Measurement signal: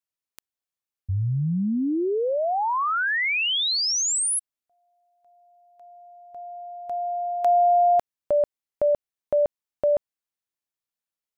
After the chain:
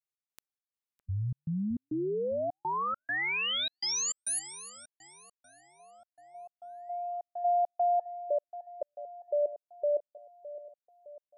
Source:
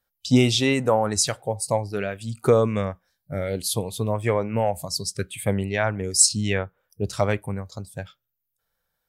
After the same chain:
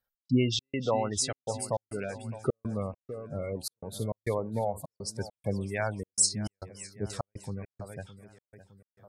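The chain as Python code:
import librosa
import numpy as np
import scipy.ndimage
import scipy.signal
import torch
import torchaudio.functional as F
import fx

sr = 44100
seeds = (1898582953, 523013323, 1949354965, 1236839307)

y = fx.spec_gate(x, sr, threshold_db=-20, keep='strong')
y = fx.echo_split(y, sr, split_hz=1900.0, low_ms=612, high_ms=303, feedback_pct=52, wet_db=-15)
y = fx.step_gate(y, sr, bpm=102, pattern='x.xx.xxx', floor_db=-60.0, edge_ms=4.5)
y = y * 10.0 ** (-7.5 / 20.0)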